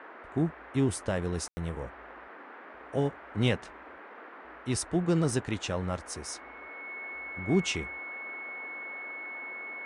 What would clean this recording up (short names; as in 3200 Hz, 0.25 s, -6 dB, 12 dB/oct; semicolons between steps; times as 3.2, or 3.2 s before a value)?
notch 2200 Hz, Q 30; room tone fill 1.48–1.57; noise print and reduce 27 dB